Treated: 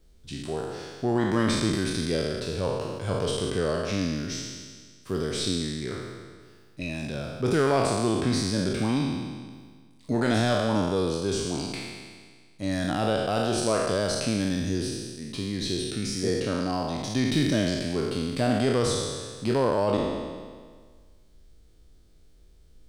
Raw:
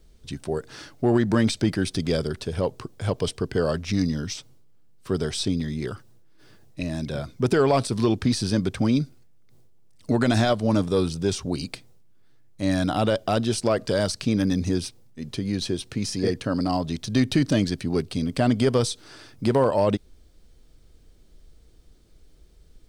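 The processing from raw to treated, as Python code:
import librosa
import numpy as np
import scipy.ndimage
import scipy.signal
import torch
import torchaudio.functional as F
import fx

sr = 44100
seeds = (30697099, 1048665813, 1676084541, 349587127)

y = fx.spec_trails(x, sr, decay_s=1.66)
y = y * librosa.db_to_amplitude(-6.0)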